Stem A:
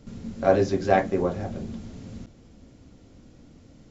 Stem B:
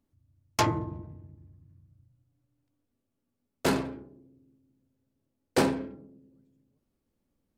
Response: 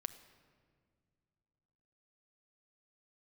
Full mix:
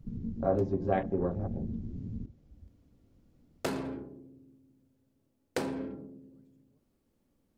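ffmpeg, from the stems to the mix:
-filter_complex "[0:a]lowpass=6700,afwtdn=0.0282,lowshelf=f=190:g=9.5,volume=0.531,asplit=3[s0][s1][s2];[s1]volume=0.237[s3];[1:a]acompressor=threshold=0.0316:ratio=6,volume=1.41[s4];[s2]apad=whole_len=334124[s5];[s4][s5]sidechaincompress=threshold=0.00794:ratio=16:attack=16:release=533[s6];[2:a]atrim=start_sample=2205[s7];[s3][s7]afir=irnorm=-1:irlink=0[s8];[s0][s6][s8]amix=inputs=3:normalize=0,equalizer=f=370:t=o:w=2.9:g=2.5,acompressor=threshold=0.0126:ratio=1.5"

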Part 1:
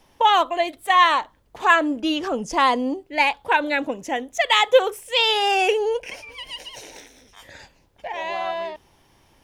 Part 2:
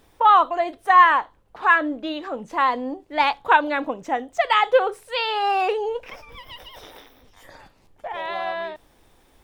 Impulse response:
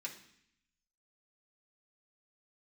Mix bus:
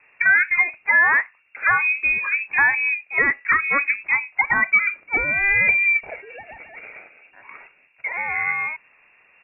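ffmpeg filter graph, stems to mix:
-filter_complex "[0:a]volume=0.841[s0];[1:a]volume=-1,adelay=1.2,volume=1.41[s1];[s0][s1]amix=inputs=2:normalize=0,highpass=f=89:p=1,lowpass=f=2400:t=q:w=0.5098,lowpass=f=2400:t=q:w=0.6013,lowpass=f=2400:t=q:w=0.9,lowpass=f=2400:t=q:w=2.563,afreqshift=-2800,alimiter=limit=0.376:level=0:latency=1:release=214"

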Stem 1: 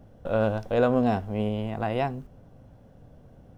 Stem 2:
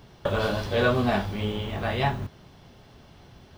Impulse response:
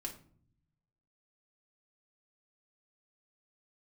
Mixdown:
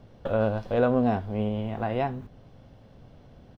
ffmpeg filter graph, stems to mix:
-filter_complex "[0:a]lowpass=f=2400:p=1,volume=0.944,asplit=2[s0][s1];[1:a]highshelf=f=4300:g=-6.5,adelay=1.1,volume=0.398[s2];[s1]apad=whole_len=157511[s3];[s2][s3]sidechaincompress=threshold=0.0251:ratio=8:attack=39:release=448[s4];[s0][s4]amix=inputs=2:normalize=0"

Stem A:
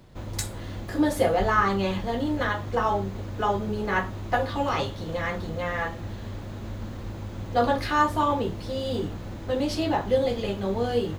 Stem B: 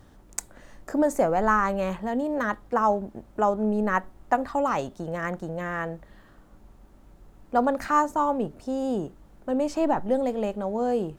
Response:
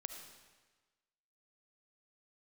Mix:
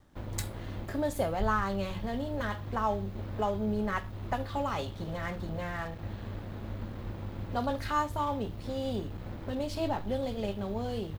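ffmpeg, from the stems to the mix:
-filter_complex "[0:a]equalizer=f=6900:w=1:g=-12.5,acrossover=split=130|3000[s0][s1][s2];[s1]acompressor=threshold=0.0141:ratio=6[s3];[s0][s3][s2]amix=inputs=3:normalize=0,aeval=exprs='sgn(val(0))*max(abs(val(0))-0.00473,0)':c=same,volume=0.891[s4];[1:a]adelay=1.6,volume=0.355[s5];[s4][s5]amix=inputs=2:normalize=0"

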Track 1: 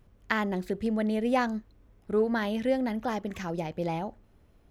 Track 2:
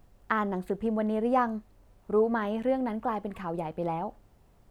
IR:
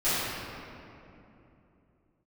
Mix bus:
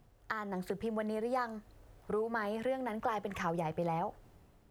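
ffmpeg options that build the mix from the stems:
-filter_complex "[0:a]acompressor=threshold=0.0158:ratio=6,volume=0.501[s0];[1:a]highpass=f=100:w=0.5412,highpass=f=100:w=1.3066,acrossover=split=130|3000[s1][s2][s3];[s2]acompressor=threshold=0.0251:ratio=6[s4];[s1][s4][s3]amix=inputs=3:normalize=0,volume=0.596[s5];[s0][s5]amix=inputs=2:normalize=0,dynaudnorm=f=140:g=7:m=2"

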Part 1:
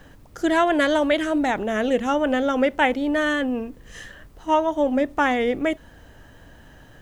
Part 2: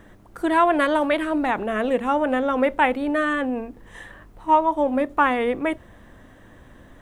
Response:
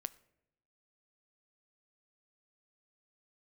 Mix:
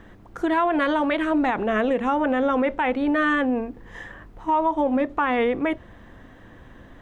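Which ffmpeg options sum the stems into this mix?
-filter_complex "[0:a]volume=0.237[s0];[1:a]lowpass=4400,volume=1.19,asplit=2[s1][s2];[s2]apad=whole_len=309321[s3];[s0][s3]sidechaincompress=threshold=0.0891:ratio=8:attack=16:release=460[s4];[s4][s1]amix=inputs=2:normalize=0,bandreject=f=600:w=17,alimiter=limit=0.211:level=0:latency=1:release=57"

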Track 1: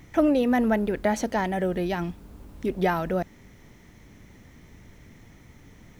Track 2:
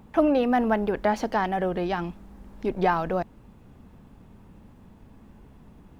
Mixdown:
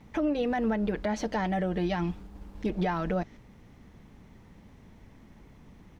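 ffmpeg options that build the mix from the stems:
-filter_complex "[0:a]agate=range=0.398:threshold=0.00708:ratio=16:detection=peak,lowpass=4900,volume=0.841[s0];[1:a]acrossover=split=350[s1][s2];[s2]acompressor=threshold=0.0355:ratio=6[s3];[s1][s3]amix=inputs=2:normalize=0,volume=-1,adelay=6.9,volume=0.668[s4];[s0][s4]amix=inputs=2:normalize=0,equalizer=f=5100:t=o:w=1.5:g=3,alimiter=limit=0.106:level=0:latency=1:release=230"

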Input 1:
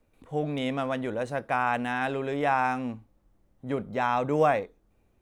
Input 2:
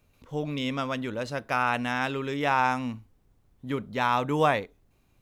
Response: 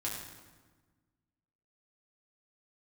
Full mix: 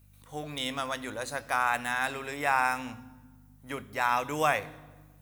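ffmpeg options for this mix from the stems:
-filter_complex "[0:a]highpass=1000,volume=0.944[s0];[1:a]aeval=exprs='val(0)+0.00501*(sin(2*PI*50*n/s)+sin(2*PI*2*50*n/s)/2+sin(2*PI*3*50*n/s)/3+sin(2*PI*4*50*n/s)/4+sin(2*PI*5*50*n/s)/5)':c=same,volume=-1,volume=0.2,asplit=2[s1][s2];[s2]volume=0.562[s3];[2:a]atrim=start_sample=2205[s4];[s3][s4]afir=irnorm=-1:irlink=0[s5];[s0][s1][s5]amix=inputs=3:normalize=0,aemphasis=mode=production:type=75fm"

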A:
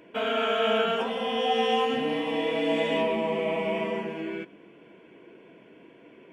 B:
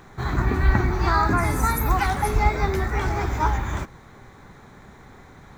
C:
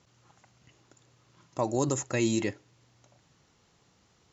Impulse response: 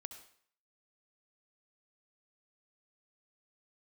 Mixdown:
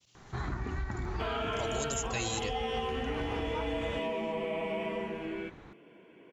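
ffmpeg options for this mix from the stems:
-filter_complex "[0:a]acontrast=75,adelay=1050,volume=0.282[s0];[1:a]lowpass=5000,acompressor=threshold=0.0708:ratio=6,adelay=150,volume=0.447[s1];[2:a]highshelf=f=2100:t=q:w=1.5:g=10,agate=range=0.0224:threshold=0.00158:ratio=3:detection=peak,asubboost=boost=11.5:cutoff=74,volume=0.596[s2];[s0][s1][s2]amix=inputs=3:normalize=0,acompressor=threshold=0.0316:ratio=6"

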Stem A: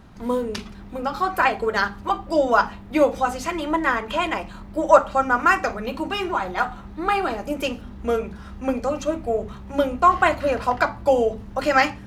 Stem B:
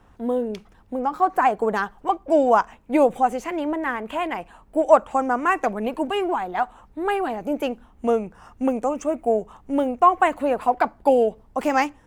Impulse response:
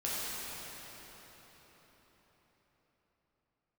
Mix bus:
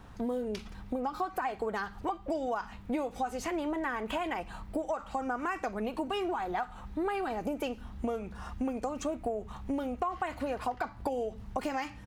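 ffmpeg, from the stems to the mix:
-filter_complex "[0:a]equalizer=f=460:t=o:w=1.8:g=-13,alimiter=limit=0.112:level=0:latency=1:release=24,volume=0.531[s0];[1:a]acompressor=threshold=0.0398:ratio=10,adelay=0.5,volume=1.19,asplit=2[s1][s2];[s2]apad=whole_len=531930[s3];[s0][s3]sidechaincompress=threshold=0.0282:ratio=4:attack=6.6:release=405[s4];[s4][s1]amix=inputs=2:normalize=0,acompressor=threshold=0.0178:ratio=1.5"

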